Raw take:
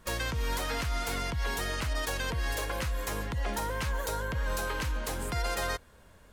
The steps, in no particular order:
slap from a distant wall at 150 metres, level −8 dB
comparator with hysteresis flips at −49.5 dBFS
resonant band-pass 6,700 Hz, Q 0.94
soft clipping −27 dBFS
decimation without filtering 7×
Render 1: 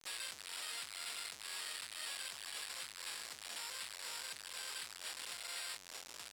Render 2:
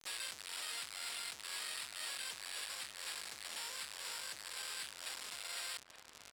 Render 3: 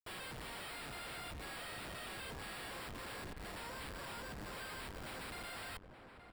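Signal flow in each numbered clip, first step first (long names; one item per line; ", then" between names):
soft clipping, then slap from a distant wall, then comparator with hysteresis, then decimation without filtering, then resonant band-pass
comparator with hysteresis, then decimation without filtering, then slap from a distant wall, then soft clipping, then resonant band-pass
soft clipping, then resonant band-pass, then comparator with hysteresis, then decimation without filtering, then slap from a distant wall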